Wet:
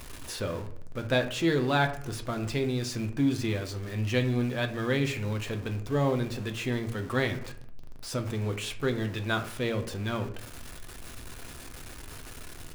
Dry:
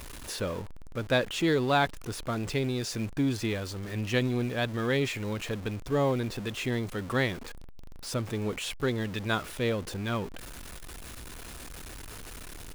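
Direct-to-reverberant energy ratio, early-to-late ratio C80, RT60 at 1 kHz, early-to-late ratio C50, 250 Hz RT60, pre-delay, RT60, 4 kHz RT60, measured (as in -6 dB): 5.5 dB, 15.5 dB, 0.55 s, 12.5 dB, 0.70 s, 8 ms, 0.60 s, 0.30 s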